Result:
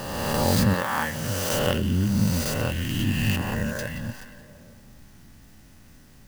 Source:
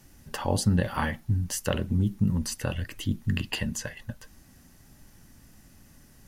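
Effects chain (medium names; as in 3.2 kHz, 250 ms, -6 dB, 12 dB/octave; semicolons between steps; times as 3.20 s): reverse spectral sustain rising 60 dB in 1.89 s; 0.73–1.52 s: high-pass 520 Hz -> 140 Hz 6 dB/octave; 3.36–3.79 s: resonant high shelf 2 kHz -13 dB, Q 3; repeats whose band climbs or falls 174 ms, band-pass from 3.3 kHz, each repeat -0.7 oct, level -9.5 dB; sampling jitter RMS 0.026 ms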